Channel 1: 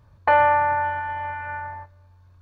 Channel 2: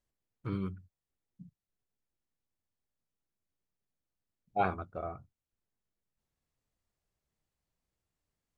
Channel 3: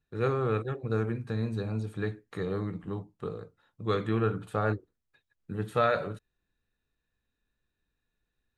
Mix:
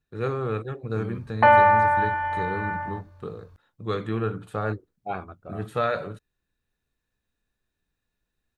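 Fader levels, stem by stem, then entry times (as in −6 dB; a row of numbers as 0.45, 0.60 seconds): +1.5, −2.0, +0.5 decibels; 1.15, 0.50, 0.00 seconds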